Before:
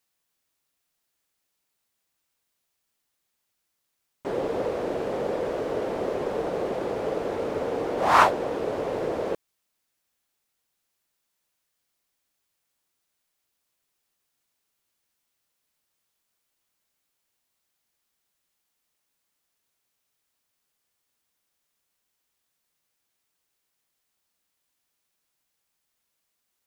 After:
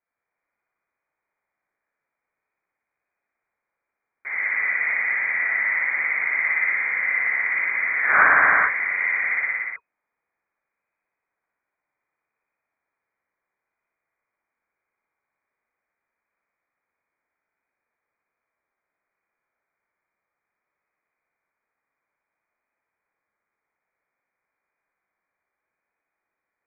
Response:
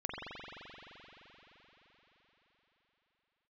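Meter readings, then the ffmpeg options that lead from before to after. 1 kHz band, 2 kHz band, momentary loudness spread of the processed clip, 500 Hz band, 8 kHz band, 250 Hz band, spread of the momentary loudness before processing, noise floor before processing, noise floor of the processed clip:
−0.5 dB, +18.0 dB, 10 LU, −14.5 dB, below −30 dB, below −15 dB, 10 LU, −79 dBFS, −84 dBFS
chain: -filter_complex "[1:a]atrim=start_sample=2205,afade=type=out:start_time=0.38:duration=0.01,atrim=end_sample=17199,asetrate=32634,aresample=44100[link_01];[0:a][link_01]afir=irnorm=-1:irlink=0,lowpass=frequency=2100:width_type=q:width=0.5098,lowpass=frequency=2100:width_type=q:width=0.6013,lowpass=frequency=2100:width_type=q:width=0.9,lowpass=frequency=2100:width_type=q:width=2.563,afreqshift=-2500"

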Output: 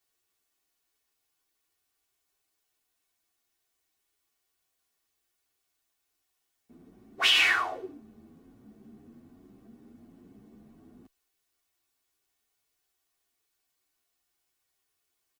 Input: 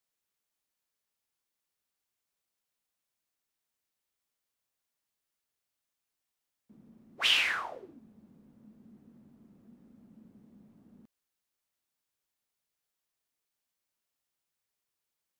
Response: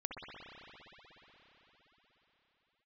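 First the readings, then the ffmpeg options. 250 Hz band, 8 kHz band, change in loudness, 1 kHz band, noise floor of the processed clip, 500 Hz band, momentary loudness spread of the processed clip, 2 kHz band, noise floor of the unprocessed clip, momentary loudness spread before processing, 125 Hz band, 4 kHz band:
+4.5 dB, +4.5 dB, +4.5 dB, +7.0 dB, −80 dBFS, +6.5 dB, 17 LU, +5.5 dB, below −85 dBFS, 13 LU, can't be measured, +4.0 dB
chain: -filter_complex "[0:a]aecho=1:1:2.7:0.52,alimiter=level_in=17dB:limit=-1dB:release=50:level=0:latency=1,asplit=2[link_01][link_02];[link_02]adelay=9.4,afreqshift=1.2[link_03];[link_01][link_03]amix=inputs=2:normalize=1,volume=-8dB"

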